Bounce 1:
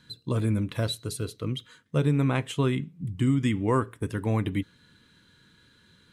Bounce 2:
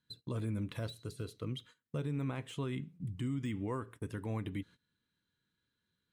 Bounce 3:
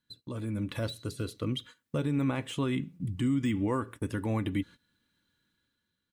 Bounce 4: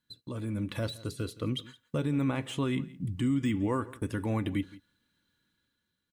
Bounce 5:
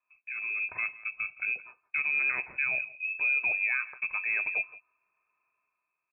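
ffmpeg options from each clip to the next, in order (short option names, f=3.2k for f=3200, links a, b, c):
-af "deesser=0.95,alimiter=limit=-22dB:level=0:latency=1:release=155,agate=range=-18dB:threshold=-47dB:ratio=16:detection=peak,volume=-7dB"
-af "aecho=1:1:3.5:0.32,dynaudnorm=f=140:g=9:m=8dB"
-af "aecho=1:1:168:0.1"
-af "lowpass=f=2.3k:t=q:w=0.5098,lowpass=f=2.3k:t=q:w=0.6013,lowpass=f=2.3k:t=q:w=0.9,lowpass=f=2.3k:t=q:w=2.563,afreqshift=-2700"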